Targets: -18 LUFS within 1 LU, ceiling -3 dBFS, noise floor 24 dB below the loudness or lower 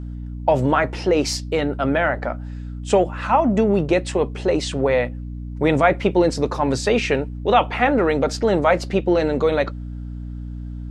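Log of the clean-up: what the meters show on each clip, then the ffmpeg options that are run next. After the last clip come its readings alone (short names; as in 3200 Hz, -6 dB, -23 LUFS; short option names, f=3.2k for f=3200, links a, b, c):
hum 60 Hz; harmonics up to 300 Hz; hum level -28 dBFS; loudness -20.0 LUFS; peak -2.0 dBFS; loudness target -18.0 LUFS
-> -af "bandreject=f=60:t=h:w=6,bandreject=f=120:t=h:w=6,bandreject=f=180:t=h:w=6,bandreject=f=240:t=h:w=6,bandreject=f=300:t=h:w=6"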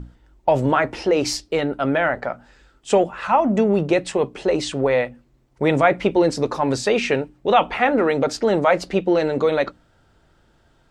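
hum none; loudness -20.0 LUFS; peak -2.5 dBFS; loudness target -18.0 LUFS
-> -af "volume=2dB,alimiter=limit=-3dB:level=0:latency=1"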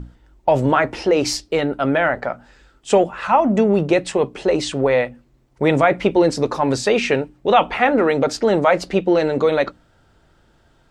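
loudness -18.5 LUFS; peak -3.0 dBFS; noise floor -57 dBFS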